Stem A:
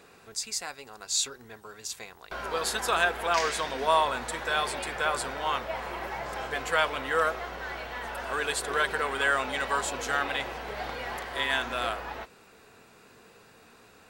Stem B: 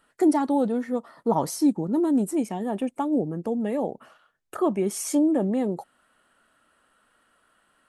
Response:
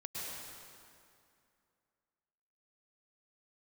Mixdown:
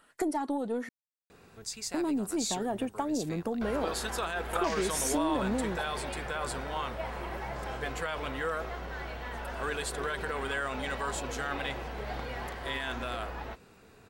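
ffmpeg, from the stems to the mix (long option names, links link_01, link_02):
-filter_complex "[0:a]lowshelf=frequency=300:gain=11.5,alimiter=limit=-18.5dB:level=0:latency=1:release=32,adelay=1300,volume=-5dB[link_01];[1:a]lowshelf=frequency=410:gain=-5.5,aphaser=in_gain=1:out_gain=1:delay=3.3:decay=0.23:speed=0.9:type=triangular,acompressor=threshold=-31dB:ratio=8,volume=3dB,asplit=3[link_02][link_03][link_04];[link_02]atrim=end=0.89,asetpts=PTS-STARTPTS,afade=type=out:start_time=0.886:duration=0.004:curve=hsin[link_05];[link_03]atrim=start=0.89:end=1.94,asetpts=PTS-STARTPTS,volume=0[link_06];[link_04]atrim=start=1.94,asetpts=PTS-STARTPTS,afade=type=in:duration=0.004:curve=hsin[link_07];[link_05][link_06][link_07]concat=n=3:v=0:a=1[link_08];[link_01][link_08]amix=inputs=2:normalize=0,aeval=exprs='0.158*(cos(1*acos(clip(val(0)/0.158,-1,1)))-cos(1*PI/2))+0.0178*(cos(2*acos(clip(val(0)/0.158,-1,1)))-cos(2*PI/2))':channel_layout=same"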